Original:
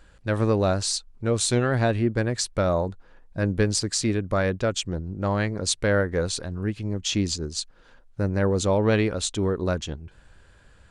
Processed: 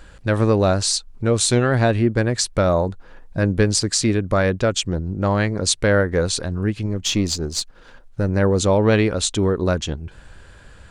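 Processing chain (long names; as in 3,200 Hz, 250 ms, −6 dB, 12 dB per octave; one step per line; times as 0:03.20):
0:06.86–0:08.29: gain on one half-wave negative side −3 dB
in parallel at 0 dB: downward compressor, threshold −34 dBFS, peak gain reduction 16.5 dB
on the sum: level +3.5 dB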